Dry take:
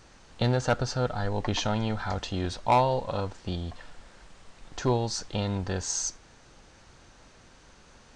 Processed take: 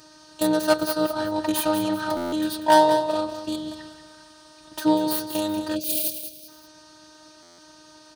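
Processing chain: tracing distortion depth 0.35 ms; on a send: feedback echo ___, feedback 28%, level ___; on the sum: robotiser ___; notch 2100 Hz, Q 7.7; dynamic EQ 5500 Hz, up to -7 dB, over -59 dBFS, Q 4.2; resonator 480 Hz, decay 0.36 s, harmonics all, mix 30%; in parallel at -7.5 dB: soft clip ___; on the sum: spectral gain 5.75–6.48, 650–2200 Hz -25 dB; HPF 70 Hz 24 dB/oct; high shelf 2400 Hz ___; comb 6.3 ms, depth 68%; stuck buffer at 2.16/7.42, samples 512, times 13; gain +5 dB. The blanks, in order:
0.19 s, -10 dB, 309 Hz, -18 dBFS, +4 dB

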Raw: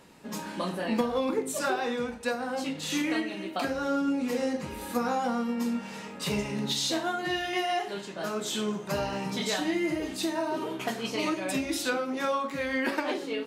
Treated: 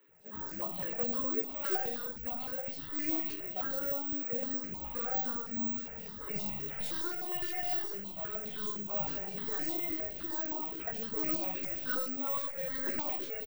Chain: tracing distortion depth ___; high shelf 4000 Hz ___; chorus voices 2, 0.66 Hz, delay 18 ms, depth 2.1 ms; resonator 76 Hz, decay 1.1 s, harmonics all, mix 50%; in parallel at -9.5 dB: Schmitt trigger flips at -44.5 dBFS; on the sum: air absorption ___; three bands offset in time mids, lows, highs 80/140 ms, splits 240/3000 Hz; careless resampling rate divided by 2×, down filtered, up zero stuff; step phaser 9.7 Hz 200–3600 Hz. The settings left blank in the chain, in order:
0.3 ms, +3.5 dB, 54 m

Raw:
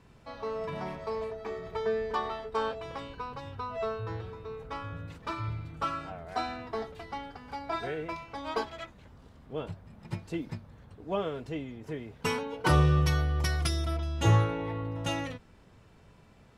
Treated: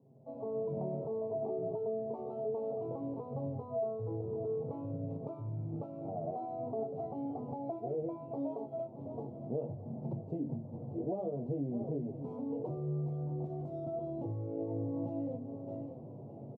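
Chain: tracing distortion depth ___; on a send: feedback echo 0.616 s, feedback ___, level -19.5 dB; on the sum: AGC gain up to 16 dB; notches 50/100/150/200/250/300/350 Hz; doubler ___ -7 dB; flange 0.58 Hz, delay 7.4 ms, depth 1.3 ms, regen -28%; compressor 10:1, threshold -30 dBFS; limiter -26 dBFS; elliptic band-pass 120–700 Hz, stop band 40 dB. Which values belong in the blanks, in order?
0.41 ms, 24%, 21 ms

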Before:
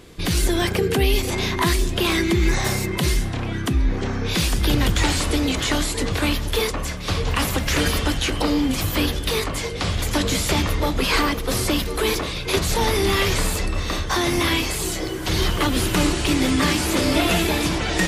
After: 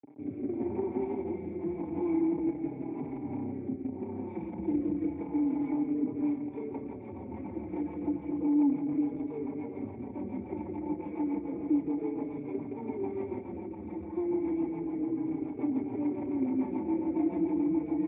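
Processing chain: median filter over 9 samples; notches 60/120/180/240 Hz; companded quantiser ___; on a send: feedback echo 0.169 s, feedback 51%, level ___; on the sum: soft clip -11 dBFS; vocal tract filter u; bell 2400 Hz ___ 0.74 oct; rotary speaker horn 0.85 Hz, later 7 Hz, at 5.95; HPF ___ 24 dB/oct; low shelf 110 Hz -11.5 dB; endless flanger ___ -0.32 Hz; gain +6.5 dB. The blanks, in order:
2-bit, -10 dB, +12.5 dB, 78 Hz, 4.6 ms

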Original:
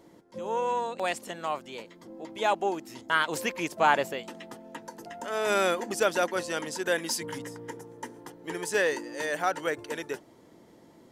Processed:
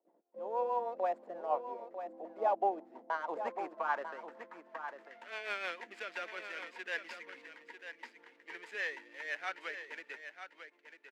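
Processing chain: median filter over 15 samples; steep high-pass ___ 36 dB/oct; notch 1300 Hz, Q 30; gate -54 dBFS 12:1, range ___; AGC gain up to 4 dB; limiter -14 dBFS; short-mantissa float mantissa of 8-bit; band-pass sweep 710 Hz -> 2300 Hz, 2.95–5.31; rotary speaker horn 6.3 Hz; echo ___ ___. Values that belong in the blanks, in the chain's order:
190 Hz, -16 dB, 0.946 s, -9.5 dB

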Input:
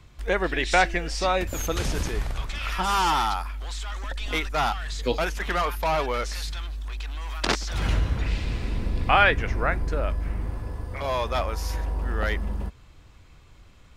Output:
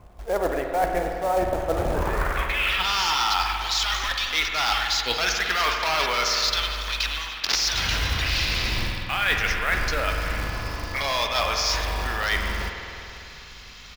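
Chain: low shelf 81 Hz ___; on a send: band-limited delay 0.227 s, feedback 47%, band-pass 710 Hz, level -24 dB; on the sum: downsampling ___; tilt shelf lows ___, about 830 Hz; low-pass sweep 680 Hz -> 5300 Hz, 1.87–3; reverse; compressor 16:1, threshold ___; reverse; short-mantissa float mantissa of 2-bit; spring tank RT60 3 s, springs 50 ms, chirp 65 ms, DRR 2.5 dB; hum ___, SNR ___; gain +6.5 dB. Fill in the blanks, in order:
+4.5 dB, 16000 Hz, -9 dB, -27 dBFS, 50 Hz, 31 dB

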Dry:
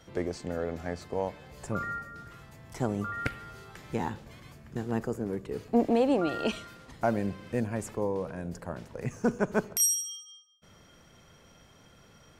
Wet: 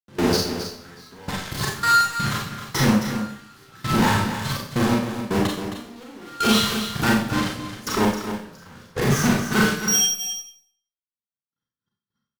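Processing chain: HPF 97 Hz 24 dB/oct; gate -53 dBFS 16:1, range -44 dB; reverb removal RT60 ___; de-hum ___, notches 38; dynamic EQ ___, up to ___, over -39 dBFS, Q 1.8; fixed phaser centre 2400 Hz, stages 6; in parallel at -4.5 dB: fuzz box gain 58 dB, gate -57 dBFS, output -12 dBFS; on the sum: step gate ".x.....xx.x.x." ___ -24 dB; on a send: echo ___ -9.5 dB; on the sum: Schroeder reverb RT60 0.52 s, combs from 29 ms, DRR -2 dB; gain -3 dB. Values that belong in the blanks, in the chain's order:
1.2 s, 150.5 Hz, 510 Hz, -4 dB, 82 bpm, 0.266 s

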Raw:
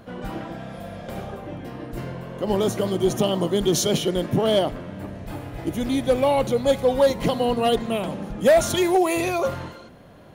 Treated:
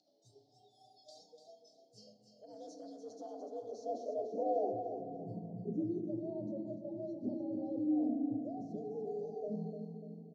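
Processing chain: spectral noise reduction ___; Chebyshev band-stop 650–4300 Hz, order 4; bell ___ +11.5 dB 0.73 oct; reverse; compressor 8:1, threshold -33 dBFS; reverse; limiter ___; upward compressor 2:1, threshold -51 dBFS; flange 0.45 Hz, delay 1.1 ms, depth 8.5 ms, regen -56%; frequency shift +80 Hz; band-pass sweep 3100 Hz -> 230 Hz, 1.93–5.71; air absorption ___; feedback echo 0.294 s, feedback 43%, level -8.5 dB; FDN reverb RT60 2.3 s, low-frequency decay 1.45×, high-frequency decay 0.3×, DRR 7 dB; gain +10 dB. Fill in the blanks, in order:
21 dB, 5600 Hz, -30 dBFS, 91 m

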